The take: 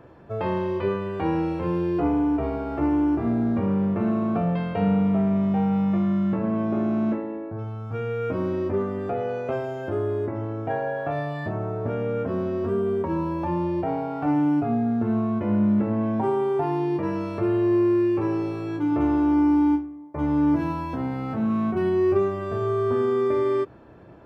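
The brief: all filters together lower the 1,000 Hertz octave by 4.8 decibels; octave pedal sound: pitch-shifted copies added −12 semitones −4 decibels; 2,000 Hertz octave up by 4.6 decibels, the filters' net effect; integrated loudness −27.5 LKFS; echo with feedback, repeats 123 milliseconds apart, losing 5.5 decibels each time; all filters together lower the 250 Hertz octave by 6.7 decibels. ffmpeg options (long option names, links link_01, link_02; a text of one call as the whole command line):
ffmpeg -i in.wav -filter_complex "[0:a]equalizer=frequency=250:width_type=o:gain=-9,equalizer=frequency=1000:width_type=o:gain=-8,equalizer=frequency=2000:width_type=o:gain=9,aecho=1:1:123|246|369|492|615|738|861:0.531|0.281|0.149|0.079|0.0419|0.0222|0.0118,asplit=2[link_01][link_02];[link_02]asetrate=22050,aresample=44100,atempo=2,volume=-4dB[link_03];[link_01][link_03]amix=inputs=2:normalize=0,volume=-1.5dB" out.wav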